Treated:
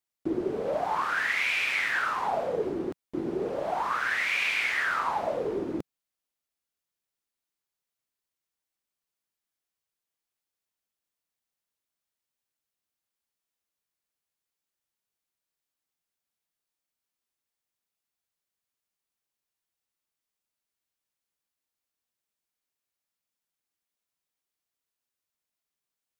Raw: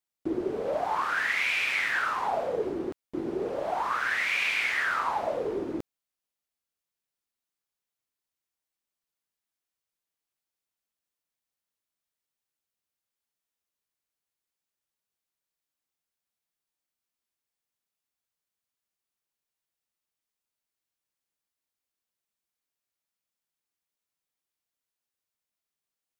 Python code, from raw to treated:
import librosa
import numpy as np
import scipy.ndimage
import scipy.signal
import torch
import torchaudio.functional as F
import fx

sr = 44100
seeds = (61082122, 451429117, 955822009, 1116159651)

y = fx.dynamic_eq(x, sr, hz=170.0, q=1.5, threshold_db=-47.0, ratio=4.0, max_db=4)